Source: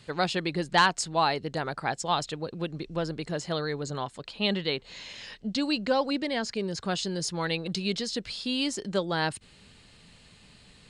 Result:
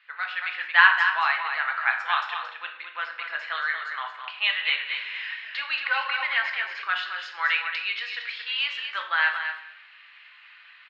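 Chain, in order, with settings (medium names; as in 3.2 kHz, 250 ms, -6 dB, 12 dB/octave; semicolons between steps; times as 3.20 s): low-pass 2.4 kHz 24 dB/octave; delay 226 ms -8 dB; level rider gain up to 9 dB; high-pass 1.4 kHz 24 dB/octave; simulated room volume 200 m³, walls mixed, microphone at 0.72 m; 4.47–6.82 s: modulated delay 233 ms, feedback 34%, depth 78 cents, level -9.5 dB; trim +3.5 dB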